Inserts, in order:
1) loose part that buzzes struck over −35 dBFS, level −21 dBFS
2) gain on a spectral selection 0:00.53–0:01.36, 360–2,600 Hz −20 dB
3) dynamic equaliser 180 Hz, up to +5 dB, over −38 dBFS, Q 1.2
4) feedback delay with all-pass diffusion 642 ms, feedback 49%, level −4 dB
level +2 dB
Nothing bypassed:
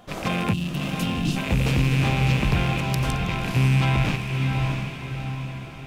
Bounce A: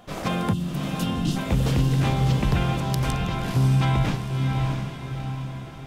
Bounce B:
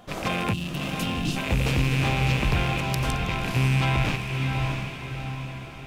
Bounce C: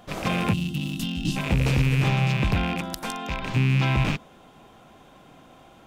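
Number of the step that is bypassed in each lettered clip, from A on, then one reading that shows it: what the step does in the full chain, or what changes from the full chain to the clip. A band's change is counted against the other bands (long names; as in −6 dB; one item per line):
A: 1, 2 kHz band −6.0 dB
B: 3, change in integrated loudness −2.0 LU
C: 4, echo-to-direct ratio −3.0 dB to none audible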